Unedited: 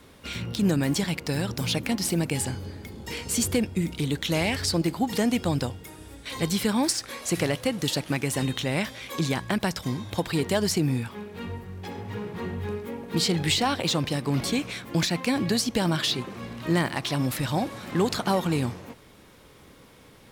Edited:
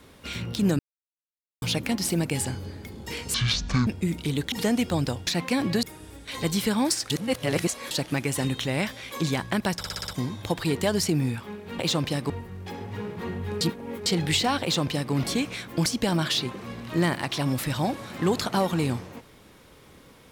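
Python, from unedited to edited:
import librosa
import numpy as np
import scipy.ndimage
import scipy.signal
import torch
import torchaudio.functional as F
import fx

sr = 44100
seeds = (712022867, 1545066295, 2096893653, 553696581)

y = fx.edit(x, sr, fx.silence(start_s=0.79, length_s=0.83),
    fx.speed_span(start_s=3.34, length_s=0.27, speed=0.51),
    fx.cut(start_s=4.26, length_s=0.8),
    fx.reverse_span(start_s=7.08, length_s=0.81),
    fx.stutter(start_s=9.76, slice_s=0.06, count=6),
    fx.reverse_span(start_s=12.78, length_s=0.45),
    fx.duplicate(start_s=13.79, length_s=0.51, to_s=11.47),
    fx.move(start_s=15.03, length_s=0.56, to_s=5.81), tone=tone)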